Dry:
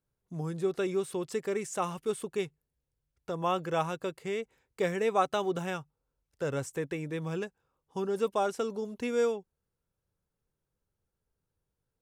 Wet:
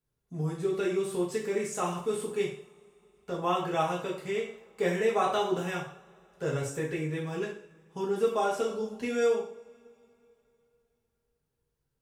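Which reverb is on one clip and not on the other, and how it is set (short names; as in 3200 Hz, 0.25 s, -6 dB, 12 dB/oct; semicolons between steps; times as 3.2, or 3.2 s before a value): two-slope reverb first 0.48 s, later 3.2 s, from -28 dB, DRR -5 dB; gain -4 dB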